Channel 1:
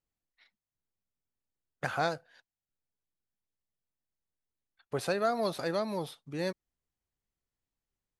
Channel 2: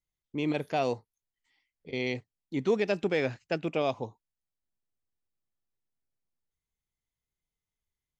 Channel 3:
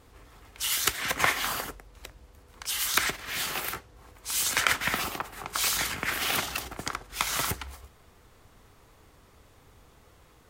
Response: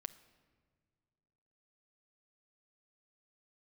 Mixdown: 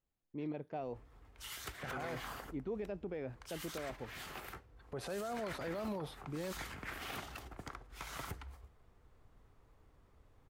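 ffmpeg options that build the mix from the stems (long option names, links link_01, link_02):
-filter_complex "[0:a]alimiter=level_in=2dB:limit=-24dB:level=0:latency=1:release=125,volume=-2dB,volume=2.5dB[link_01];[1:a]highshelf=frequency=2700:gain=-11,volume=-10dB,asplit=2[link_02][link_03];[link_03]volume=-18dB[link_04];[2:a]lowshelf=frequency=66:gain=9,asoftclip=type=hard:threshold=-18.5dB,adelay=800,volume=-13dB,asplit=2[link_05][link_06];[link_06]volume=-7.5dB[link_07];[3:a]atrim=start_sample=2205[link_08];[link_04][link_07]amix=inputs=2:normalize=0[link_09];[link_09][link_08]afir=irnorm=-1:irlink=0[link_10];[link_01][link_02][link_05][link_10]amix=inputs=4:normalize=0,highshelf=frequency=2500:gain=-11,alimiter=level_in=8.5dB:limit=-24dB:level=0:latency=1:release=25,volume=-8.5dB"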